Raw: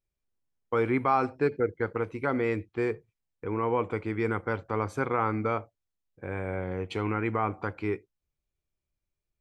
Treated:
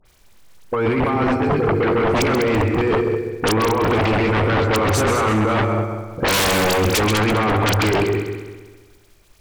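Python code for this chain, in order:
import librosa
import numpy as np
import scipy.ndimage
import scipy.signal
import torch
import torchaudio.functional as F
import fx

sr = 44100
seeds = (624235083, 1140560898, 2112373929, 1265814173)

y = fx.high_shelf(x, sr, hz=5400.0, db=-2.5)
y = fx.hum_notches(y, sr, base_hz=50, count=9)
y = fx.over_compress(y, sr, threshold_db=-37.0, ratio=-1.0)
y = (np.mod(10.0 ** (22.0 / 20.0) * y + 1.0, 2.0) - 1.0) / 10.0 ** (22.0 / 20.0)
y = fx.echo_heads(y, sr, ms=66, heads='second and third', feedback_pct=43, wet_db=-9)
y = fx.dmg_crackle(y, sr, seeds[0], per_s=270.0, level_db=-64.0)
y = fx.dispersion(y, sr, late='highs', ms=54.0, hz=1900.0)
y = fx.fold_sine(y, sr, drive_db=13, ceiling_db=-20.5)
y = F.gain(torch.from_numpy(y), 6.5).numpy()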